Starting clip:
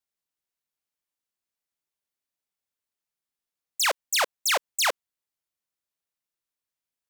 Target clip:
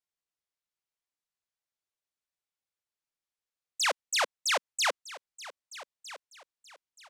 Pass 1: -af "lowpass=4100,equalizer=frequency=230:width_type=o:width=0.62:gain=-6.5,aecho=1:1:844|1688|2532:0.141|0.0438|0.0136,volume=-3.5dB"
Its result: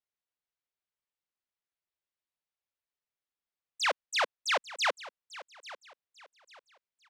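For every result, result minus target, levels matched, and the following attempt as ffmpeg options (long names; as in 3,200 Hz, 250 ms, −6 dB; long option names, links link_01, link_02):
8,000 Hz band −6.5 dB; echo 414 ms early
-af "lowpass=8500,equalizer=frequency=230:width_type=o:width=0.62:gain=-6.5,aecho=1:1:844|1688|2532:0.141|0.0438|0.0136,volume=-3.5dB"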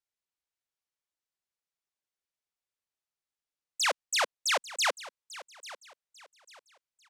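echo 414 ms early
-af "lowpass=8500,equalizer=frequency=230:width_type=o:width=0.62:gain=-6.5,aecho=1:1:1258|2516|3774:0.141|0.0438|0.0136,volume=-3.5dB"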